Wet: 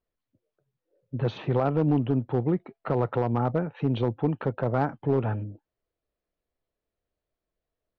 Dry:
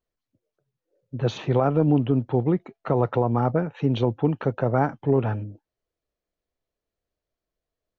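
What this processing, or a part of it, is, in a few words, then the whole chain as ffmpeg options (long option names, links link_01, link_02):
clipper into limiter: -af "aemphasis=mode=reproduction:type=50fm,asoftclip=type=hard:threshold=-12.5dB,alimiter=limit=-16dB:level=0:latency=1:release=464,lowpass=frequency=5300:width=0.5412,lowpass=frequency=5300:width=1.3066"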